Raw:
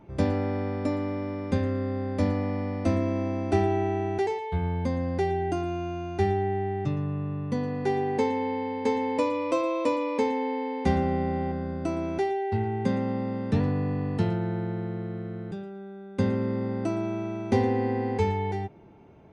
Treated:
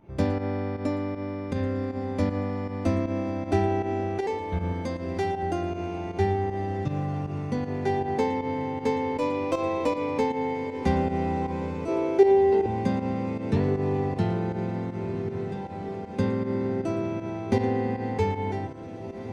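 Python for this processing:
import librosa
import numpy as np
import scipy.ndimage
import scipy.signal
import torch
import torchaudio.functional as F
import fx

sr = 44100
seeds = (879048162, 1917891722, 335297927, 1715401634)

y = fx.tracing_dist(x, sr, depth_ms=0.025)
y = fx.tilt_eq(y, sr, slope=1.5, at=(4.72, 5.43))
y = fx.highpass_res(y, sr, hz=420.0, q=5.2, at=(11.88, 12.66))
y = fx.echo_diffused(y, sr, ms=1776, feedback_pct=68, wet_db=-11.5)
y = fx.volume_shaper(y, sr, bpm=157, per_beat=1, depth_db=-10, release_ms=95.0, shape='fast start')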